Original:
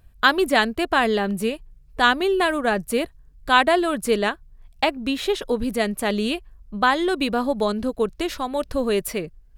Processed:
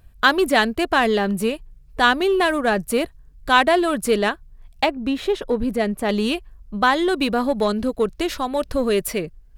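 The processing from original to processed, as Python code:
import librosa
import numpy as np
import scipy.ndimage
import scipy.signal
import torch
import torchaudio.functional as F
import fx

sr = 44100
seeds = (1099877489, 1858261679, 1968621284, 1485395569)

p1 = fx.high_shelf(x, sr, hz=2300.0, db=-9.5, at=(4.86, 6.09))
p2 = np.clip(10.0 ** (21.0 / 20.0) * p1, -1.0, 1.0) / 10.0 ** (21.0 / 20.0)
y = p1 + (p2 * 10.0 ** (-8.5 / 20.0))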